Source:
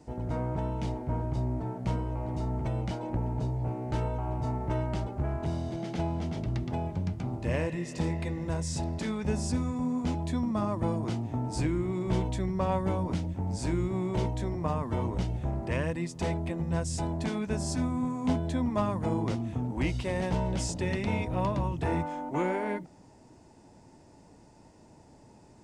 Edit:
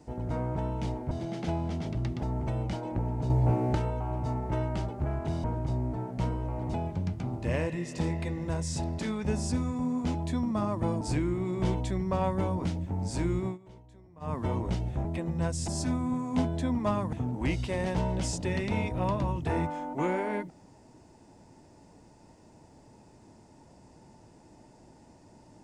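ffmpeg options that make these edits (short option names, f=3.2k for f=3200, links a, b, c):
-filter_complex "[0:a]asplit=13[a][b][c][d][e][f][g][h][i][j][k][l][m];[a]atrim=end=1.112[n];[b]atrim=start=5.618:end=6.742[o];[c]atrim=start=2.408:end=3.482[p];[d]atrim=start=3.478:end=3.932,asetpts=PTS-STARTPTS,volume=7.5dB[q];[e]atrim=start=3.928:end=5.622[r];[f]atrim=start=1.108:end=2.412[s];[g]atrim=start=6.738:end=11.012[t];[h]atrim=start=11.488:end=14.06,asetpts=PTS-STARTPTS,afade=t=out:st=2.452:d=0.12:silence=0.0749894[u];[i]atrim=start=14.06:end=14.68,asetpts=PTS-STARTPTS,volume=-22.5dB[v];[j]atrim=start=14.68:end=15.532,asetpts=PTS-STARTPTS,afade=t=in:d=0.12:silence=0.0749894[w];[k]atrim=start=16.368:end=17.002[x];[l]atrim=start=17.588:end=19.042[y];[m]atrim=start=19.488[z];[n][o]acrossfade=d=0.004:c1=hsin:c2=hsin[aa];[aa][p]acrossfade=d=0.004:c1=hsin:c2=hsin[ab];[ab][q]acrossfade=d=0.004:c1=hsin:c2=hsin[ac];[ac][r]acrossfade=d=0.004:c1=hsin:c2=hsin[ad];[ad][s]acrossfade=d=0.004:c1=hsin:c2=hsin[ae];[ae][t]acrossfade=d=0.004:c1=hsin:c2=hsin[af];[u][v][w]concat=n=3:v=0:a=1[ag];[af][ag]acrossfade=d=0.004:c1=hsin:c2=hsin[ah];[ah][x]acrossfade=d=0.004:c1=hsin:c2=hsin[ai];[ai][y]acrossfade=d=0.004:c1=hsin:c2=hsin[aj];[aj][z]acrossfade=d=0.004:c1=hsin:c2=hsin"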